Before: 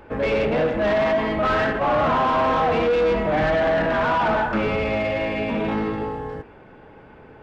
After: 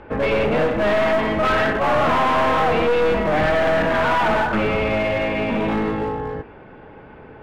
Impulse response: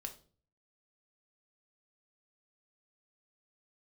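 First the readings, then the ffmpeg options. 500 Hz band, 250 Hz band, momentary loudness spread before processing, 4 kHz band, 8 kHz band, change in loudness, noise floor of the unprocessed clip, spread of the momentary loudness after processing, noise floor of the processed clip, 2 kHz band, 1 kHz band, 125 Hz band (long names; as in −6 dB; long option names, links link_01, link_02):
+1.5 dB, +2.0 dB, 6 LU, +3.5 dB, can't be measured, +2.0 dB, −46 dBFS, 5 LU, −42 dBFS, +3.5 dB, +2.0 dB, +2.0 dB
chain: -filter_complex "[0:a]lowpass=3700,acrossover=split=2100[link_01][link_02];[link_01]aeval=exprs='clip(val(0),-1,0.0562)':channel_layout=same[link_03];[link_03][link_02]amix=inputs=2:normalize=0,volume=4dB"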